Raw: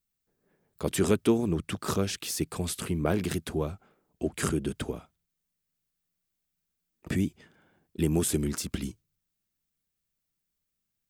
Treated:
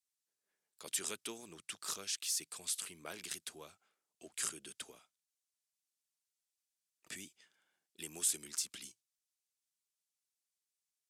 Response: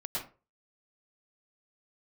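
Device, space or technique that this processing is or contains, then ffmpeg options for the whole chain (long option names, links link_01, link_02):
piezo pickup straight into a mixer: -af "lowpass=8200,aderivative,volume=1dB"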